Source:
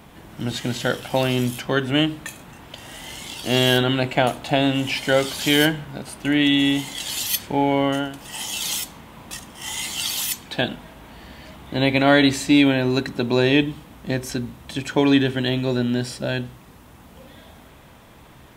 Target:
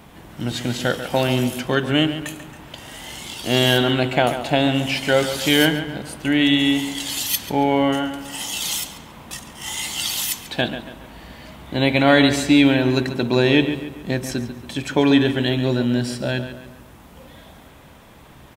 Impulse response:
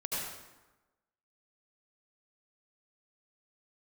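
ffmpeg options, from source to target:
-filter_complex "[0:a]asplit=2[link_01][link_02];[link_02]adelay=140,lowpass=frequency=3900:poles=1,volume=-10dB,asplit=2[link_03][link_04];[link_04]adelay=140,lowpass=frequency=3900:poles=1,volume=0.45,asplit=2[link_05][link_06];[link_06]adelay=140,lowpass=frequency=3900:poles=1,volume=0.45,asplit=2[link_07][link_08];[link_08]adelay=140,lowpass=frequency=3900:poles=1,volume=0.45,asplit=2[link_09][link_10];[link_10]adelay=140,lowpass=frequency=3900:poles=1,volume=0.45[link_11];[link_01][link_03][link_05][link_07][link_09][link_11]amix=inputs=6:normalize=0,volume=1dB"

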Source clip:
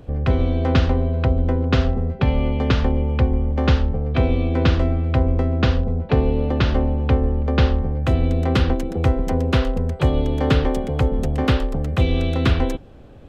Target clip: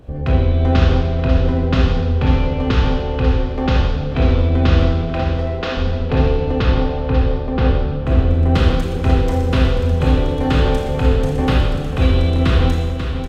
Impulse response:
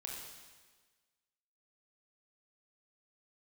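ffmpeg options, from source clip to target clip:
-filter_complex "[0:a]asettb=1/sr,asplit=3[link_01][link_02][link_03];[link_01]atrim=end=5.024[link_04];[link_02]atrim=start=5.02:end=5.77,asetpts=PTS-STARTPTS,afade=type=in:duration=0.004:curve=qsin,afade=type=out:start_time=0.746:duration=0.004:curve=qsin,highpass=390[link_05];[link_03]atrim=start=5.766[link_06];[link_04][link_05]acrossfade=duration=0.004:curve1=hsin:curve2=qsin[link_07];[link_07][link_06]acrossfade=duration=0.004:curve1=qsin:curve2=hsin,asettb=1/sr,asplit=3[link_08][link_09][link_10];[link_08]atrim=end=6.634[link_11];[link_09]atrim=start=6.63:end=8.5,asetpts=PTS-STARTPTS,afade=type=in:duration=0.004:curve=qsin,afade=type=out:start_time=1.866:duration=0.004:curve=qsin,highshelf=frequency=2700:gain=-10[link_12];[link_10]atrim=start=8.496[link_13];[link_11][link_12]acrossfade=duration=0.004:curve1=hsin:curve2=qsin[link_14];[link_14][link_13]acrossfade=duration=0.004:curve1=qsin:curve2=hsin,aecho=1:1:540:0.398[link_15];[1:a]atrim=start_sample=2205,asetrate=48510,aresample=44100[link_16];[link_15][link_16]afir=irnorm=-1:irlink=0,volume=5dB"

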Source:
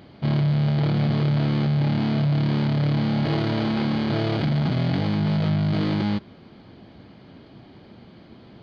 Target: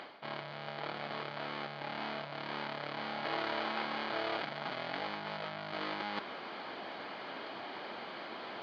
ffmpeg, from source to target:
ffmpeg -i in.wav -af "lowpass=frequency=1600:poles=1,areverse,acompressor=threshold=-36dB:ratio=16,areverse,highpass=910,volume=16.5dB" out.wav

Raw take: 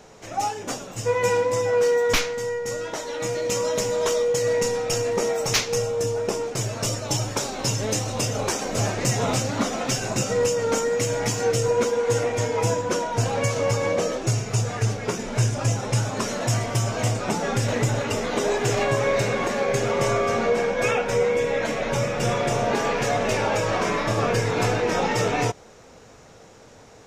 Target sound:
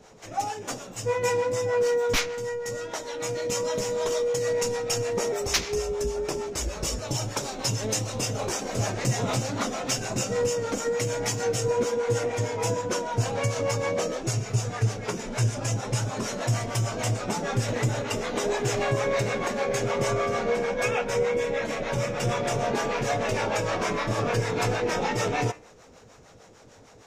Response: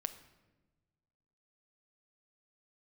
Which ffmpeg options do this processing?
-filter_complex "[0:a]asettb=1/sr,asplit=3[link_01][link_02][link_03];[link_01]atrim=end=5.324[link_04];[link_02]atrim=start=5.32:end=6.98,asetpts=PTS-STARTPTS,afade=type=in:duration=0.004:curve=qsin,afade=type=out:start_time=1.656:duration=0.004:curve=qsin,afreqshift=-57[link_05];[link_03]atrim=start=6.976[link_06];[link_04][link_05]acrossfade=duration=0.004:curve1=hsin:curve2=qsin[link_07];[link_07][link_06]acrossfade=duration=0.004:curve1=qsin:curve2=hsin,bandreject=frequency=76.6:width_type=h:width=4,bandreject=frequency=153.2:width_type=h:width=4,bandreject=frequency=229.8:width_type=h:width=4,bandreject=frequency=306.4:width_type=h:width=4,bandreject=frequency=383:width_type=h:width=4,bandreject=frequency=459.6:width_type=h:width=4,bandreject=frequency=536.2:width_type=h:width=4,bandreject=frequency=612.8:width_type=h:width=4,bandreject=frequency=689.4:width_type=h:width=4,bandreject=frequency=766:width_type=h:width=4,bandreject=frequency=842.6:width_type=h:width=4,bandreject=frequency=919.2:width_type=h:width=4,bandreject=frequency=995.8:width_type=h:width=4,bandreject=frequency=1072.4:width_type=h:width=4,bandreject=frequency=1149:width_type=h:width=4,bandreject=frequency=1225.6:width_type=h:width=4,bandreject=frequency=1302.2:width_type=h:width=4,bandreject=frequency=1378.8:width_type=h:width=4,bandreject=frequency=1455.4:width_type=h:width=4,bandreject=frequency=1532:width_type=h:width=4,bandreject=frequency=1608.6:width_type=h:width=4,bandreject=frequency=1685.2:width_type=h:width=4,bandreject=frequency=1761.8:width_type=h:width=4,bandreject=frequency=1838.4:width_type=h:width=4,bandreject=frequency=1915:width_type=h:width=4,bandreject=frequency=1991.6:width_type=h:width=4,bandreject=frequency=2068.2:width_type=h:width=4,bandreject=frequency=2144.8:width_type=h:width=4,bandreject=frequency=2221.4:width_type=h:width=4,bandreject=frequency=2298:width_type=h:width=4,bandreject=frequency=2374.6:width_type=h:width=4,bandreject=frequency=2451.2:width_type=h:width=4,bandreject=frequency=2527.8:width_type=h:width=4,bandreject=frequency=2604.4:width_type=h:width=4,bandreject=frequency=2681:width_type=h:width=4,bandreject=frequency=2757.6:width_type=h:width=4,bandreject=frequency=2834.2:width_type=h:width=4,bandreject=frequency=2910.8:width_type=h:width=4,bandreject=frequency=2987.4:width_type=h:width=4,acrossover=split=510[link_08][link_09];[link_08]aeval=exprs='val(0)*(1-0.7/2+0.7/2*cos(2*PI*6.6*n/s))':channel_layout=same[link_10];[link_09]aeval=exprs='val(0)*(1-0.7/2-0.7/2*cos(2*PI*6.6*n/s))':channel_layout=same[link_11];[link_10][link_11]amix=inputs=2:normalize=0"

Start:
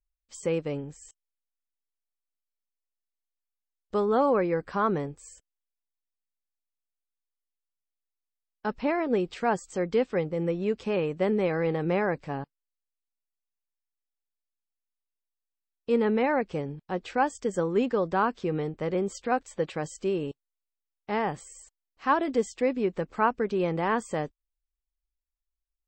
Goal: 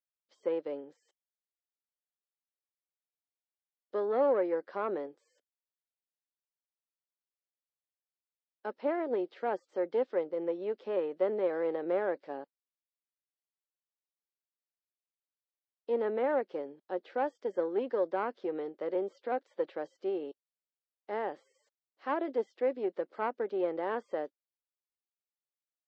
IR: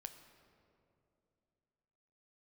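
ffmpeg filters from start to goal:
-filter_complex "[0:a]aeval=exprs='(tanh(6.31*val(0)+0.55)-tanh(0.55))/6.31':channel_layout=same,acrossover=split=2800[link_01][link_02];[link_02]acompressor=threshold=-56dB:ratio=4:attack=1:release=60[link_03];[link_01][link_03]amix=inputs=2:normalize=0,highpass=frequency=290:width=0.5412,highpass=frequency=290:width=1.3066,equalizer=frequency=360:width_type=q:width=4:gain=3,equalizer=frequency=560:width_type=q:width=4:gain=7,equalizer=frequency=1100:width_type=q:width=4:gain=-4,equalizer=frequency=2500:width_type=q:width=4:gain=-7,lowpass=frequency=4900:width=0.5412,lowpass=frequency=4900:width=1.3066,volume=-5dB"

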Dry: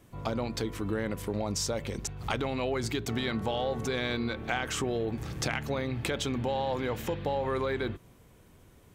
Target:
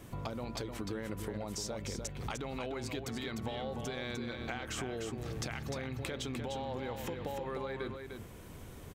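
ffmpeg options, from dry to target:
ffmpeg -i in.wav -filter_complex "[0:a]acompressor=threshold=-46dB:ratio=5,asplit=2[link_01][link_02];[link_02]aecho=0:1:301:0.501[link_03];[link_01][link_03]amix=inputs=2:normalize=0,volume=7dB" out.wav

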